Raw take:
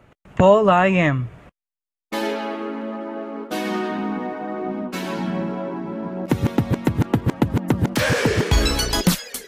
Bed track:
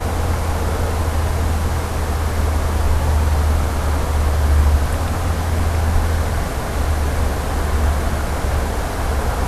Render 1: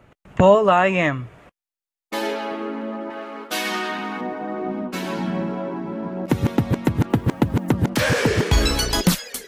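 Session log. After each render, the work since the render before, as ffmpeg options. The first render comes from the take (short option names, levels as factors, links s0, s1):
-filter_complex "[0:a]asettb=1/sr,asplit=3[s0][s1][s2];[s0]atrim=end=0.554[s3];[s1]atrim=start=0.55:end=2.52,asetpts=PTS-STARTPTS,afade=t=in:d=0.004:c=qsin,afade=t=out:st=1.966:d=0.004:c=qsin,bass=f=250:g=-7,treble=f=4000:g=1[s4];[s2]atrim=start=2.516[s5];[s3][s4]acrossfade=d=0.004:c1=hsin:c2=qsin[s6];[s6][s5]acrossfade=d=0.004:c1=qsin:c2=hsin,asettb=1/sr,asplit=3[s7][s8][s9];[s7]atrim=end=3.104[s10];[s8]atrim=start=3.1:end=4.21,asetpts=PTS-STARTPTS,afade=t=in:d=0.004:c=qsin,afade=t=out:st=1.106:d=0.004:c=qsin,tiltshelf=f=810:g=-8.5[s11];[s9]atrim=start=4.206[s12];[s10][s11]acrossfade=d=0.004:c1=hsin:c2=qsin[s13];[s13][s12]acrossfade=d=0.004:c1=qsin:c2=hsin,asettb=1/sr,asplit=3[s14][s15][s16];[s14]atrim=end=7.104[s17];[s15]atrim=start=7.1:end=7.71,asetpts=PTS-STARTPTS,afade=t=in:d=0.004:c=qsin,afade=t=out:st=0.606:d=0.004:c=qsin,acrusher=bits=8:mix=0:aa=0.5[s18];[s16]atrim=start=7.706[s19];[s17][s18]acrossfade=d=0.004:c1=hsin:c2=qsin[s20];[s20][s19]acrossfade=d=0.004:c1=qsin:c2=hsin"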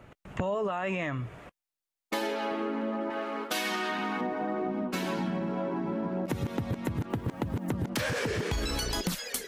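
-af "alimiter=limit=0.2:level=0:latency=1:release=48,acompressor=threshold=0.0398:ratio=6"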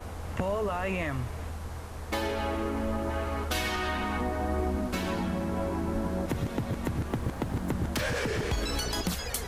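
-filter_complex "[1:a]volume=0.112[s0];[0:a][s0]amix=inputs=2:normalize=0"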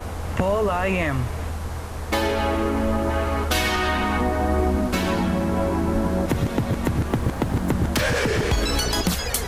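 -af "volume=2.66"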